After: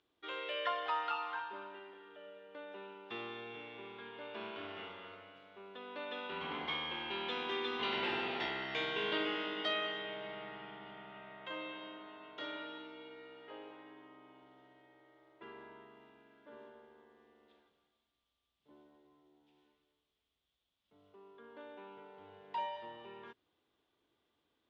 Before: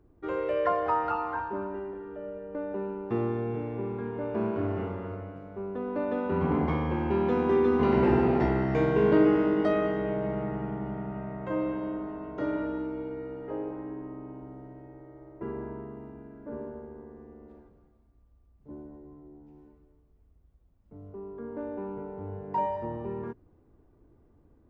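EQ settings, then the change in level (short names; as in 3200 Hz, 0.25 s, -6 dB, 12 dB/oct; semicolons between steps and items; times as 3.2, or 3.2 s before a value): band-pass 3400 Hz, Q 5.4; +16.0 dB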